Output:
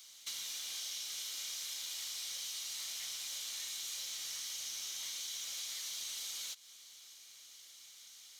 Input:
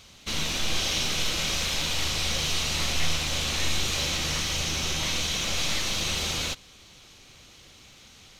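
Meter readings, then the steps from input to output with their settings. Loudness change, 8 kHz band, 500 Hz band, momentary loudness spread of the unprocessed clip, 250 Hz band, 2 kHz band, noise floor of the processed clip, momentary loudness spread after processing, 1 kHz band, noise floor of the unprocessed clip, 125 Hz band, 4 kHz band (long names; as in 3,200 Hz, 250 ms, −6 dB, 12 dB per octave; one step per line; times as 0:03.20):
−13.5 dB, −9.5 dB, −31.0 dB, 2 LU, below −35 dB, −20.5 dB, −57 dBFS, 14 LU, −25.0 dB, −52 dBFS, below −40 dB, −14.0 dB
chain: first difference
notch filter 2,600 Hz, Q 9
downward compressor 6 to 1, threshold −41 dBFS, peak gain reduction 11.5 dB
level +1 dB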